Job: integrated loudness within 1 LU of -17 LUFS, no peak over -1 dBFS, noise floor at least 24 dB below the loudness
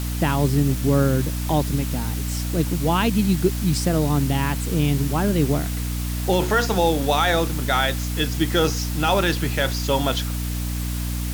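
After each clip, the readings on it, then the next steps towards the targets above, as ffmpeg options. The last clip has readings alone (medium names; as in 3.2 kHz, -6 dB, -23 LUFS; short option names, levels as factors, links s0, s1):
hum 60 Hz; highest harmonic 300 Hz; hum level -23 dBFS; noise floor -26 dBFS; noise floor target -46 dBFS; loudness -21.5 LUFS; peak level -6.5 dBFS; loudness target -17.0 LUFS
-> -af "bandreject=f=60:t=h:w=6,bandreject=f=120:t=h:w=6,bandreject=f=180:t=h:w=6,bandreject=f=240:t=h:w=6,bandreject=f=300:t=h:w=6"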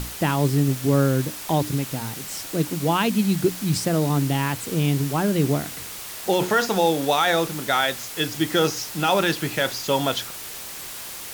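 hum not found; noise floor -36 dBFS; noise floor target -47 dBFS
-> -af "afftdn=nr=11:nf=-36"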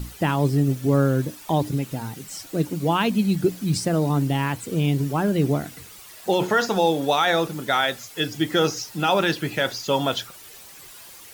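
noise floor -44 dBFS; noise floor target -47 dBFS
-> -af "afftdn=nr=6:nf=-44"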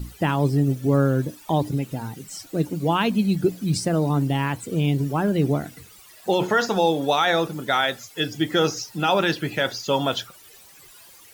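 noise floor -49 dBFS; loudness -23.0 LUFS; peak level -8.5 dBFS; loudness target -17.0 LUFS
-> -af "volume=2"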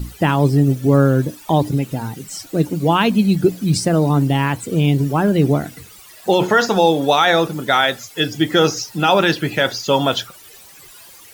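loudness -17.0 LUFS; peak level -2.5 dBFS; noise floor -43 dBFS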